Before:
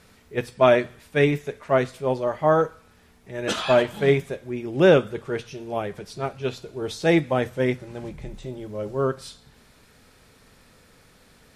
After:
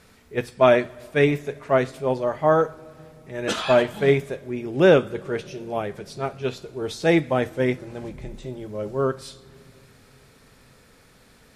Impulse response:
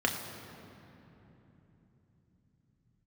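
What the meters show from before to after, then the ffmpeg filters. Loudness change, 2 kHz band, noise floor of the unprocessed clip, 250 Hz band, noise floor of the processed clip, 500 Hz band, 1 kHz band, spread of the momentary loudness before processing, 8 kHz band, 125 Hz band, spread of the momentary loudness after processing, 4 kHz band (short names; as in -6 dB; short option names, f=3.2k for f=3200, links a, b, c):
+0.5 dB, +0.5 dB, -56 dBFS, +0.5 dB, -54 dBFS, +0.5 dB, +0.5 dB, 16 LU, 0.0 dB, -0.5 dB, 16 LU, 0.0 dB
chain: -filter_complex "[0:a]asplit=2[a][b];[1:a]atrim=start_sample=2205,asetrate=40131,aresample=44100[c];[b][c]afir=irnorm=-1:irlink=0,volume=-29dB[d];[a][d]amix=inputs=2:normalize=0"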